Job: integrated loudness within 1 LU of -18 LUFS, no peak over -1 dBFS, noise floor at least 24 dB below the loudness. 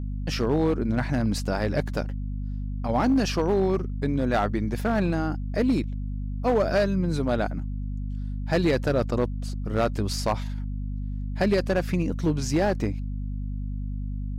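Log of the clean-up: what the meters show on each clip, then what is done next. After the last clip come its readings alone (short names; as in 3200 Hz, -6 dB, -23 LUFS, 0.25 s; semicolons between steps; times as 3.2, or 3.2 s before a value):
clipped 1.0%; flat tops at -16.0 dBFS; hum 50 Hz; harmonics up to 250 Hz; hum level -28 dBFS; loudness -26.5 LUFS; peak -16.0 dBFS; loudness target -18.0 LUFS
-> clip repair -16 dBFS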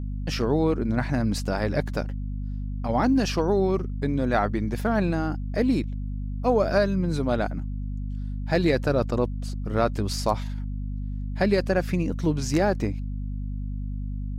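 clipped 0.0%; hum 50 Hz; harmonics up to 250 Hz; hum level -28 dBFS
-> notches 50/100/150/200/250 Hz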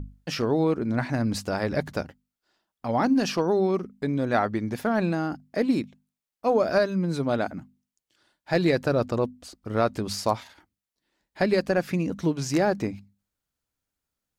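hum none; loudness -26.0 LUFS; peak -9.5 dBFS; loudness target -18.0 LUFS
-> gain +8 dB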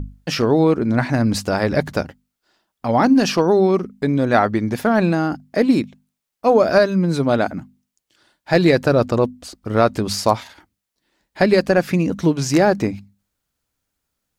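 loudness -18.0 LUFS; peak -1.5 dBFS; noise floor -80 dBFS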